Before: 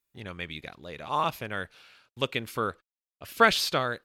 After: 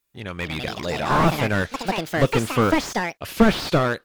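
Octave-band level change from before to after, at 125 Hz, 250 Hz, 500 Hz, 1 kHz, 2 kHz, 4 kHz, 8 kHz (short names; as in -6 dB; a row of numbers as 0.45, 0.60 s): +15.5, +16.0, +8.5, +5.5, +5.0, +2.5, +5.5 dB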